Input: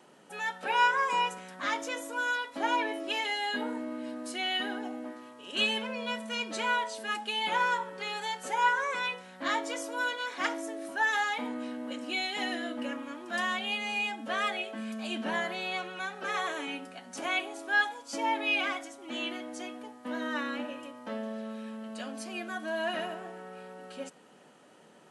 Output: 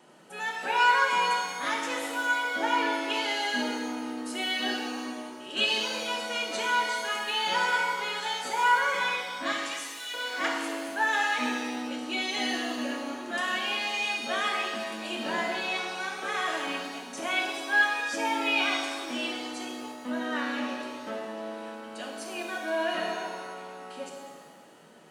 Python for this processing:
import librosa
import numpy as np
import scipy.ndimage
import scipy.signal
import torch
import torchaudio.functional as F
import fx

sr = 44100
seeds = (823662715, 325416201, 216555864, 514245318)

y = fx.steep_highpass(x, sr, hz=1900.0, slope=48, at=(9.52, 10.14))
y = fx.rev_shimmer(y, sr, seeds[0], rt60_s=1.4, semitones=7, shimmer_db=-8, drr_db=0.5)